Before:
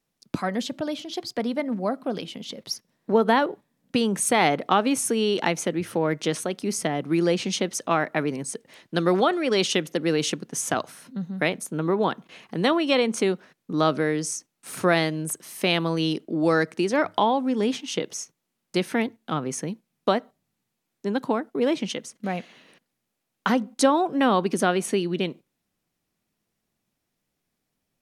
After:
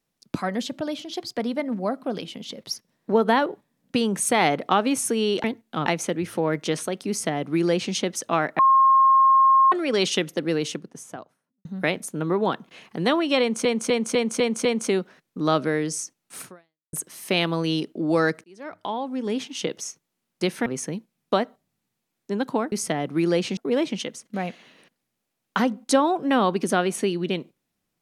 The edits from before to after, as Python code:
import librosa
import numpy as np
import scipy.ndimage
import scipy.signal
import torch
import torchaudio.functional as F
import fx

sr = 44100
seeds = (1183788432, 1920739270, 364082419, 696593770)

y = fx.studio_fade_out(x, sr, start_s=9.84, length_s=1.39)
y = fx.edit(y, sr, fx.duplicate(start_s=6.67, length_s=0.85, to_s=21.47),
    fx.bleep(start_s=8.17, length_s=1.13, hz=1070.0, db=-12.5),
    fx.repeat(start_s=12.98, length_s=0.25, count=6),
    fx.fade_out_span(start_s=14.74, length_s=0.52, curve='exp'),
    fx.fade_in_span(start_s=16.77, length_s=1.22),
    fx.move(start_s=18.99, length_s=0.42, to_s=5.44), tone=tone)